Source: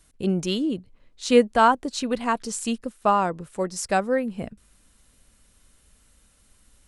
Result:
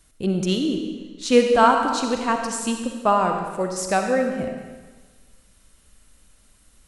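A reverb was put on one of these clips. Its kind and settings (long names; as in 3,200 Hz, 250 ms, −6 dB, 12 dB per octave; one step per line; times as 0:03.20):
comb and all-pass reverb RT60 1.4 s, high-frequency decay 0.95×, pre-delay 20 ms, DRR 3.5 dB
level +1 dB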